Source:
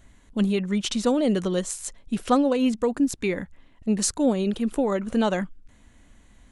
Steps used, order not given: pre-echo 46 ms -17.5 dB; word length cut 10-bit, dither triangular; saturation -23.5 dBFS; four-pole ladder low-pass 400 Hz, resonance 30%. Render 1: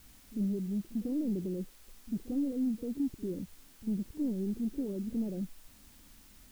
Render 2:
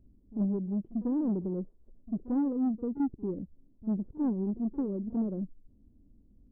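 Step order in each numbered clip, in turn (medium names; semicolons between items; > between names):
saturation > four-pole ladder low-pass > word length cut > pre-echo; word length cut > four-pole ladder low-pass > saturation > pre-echo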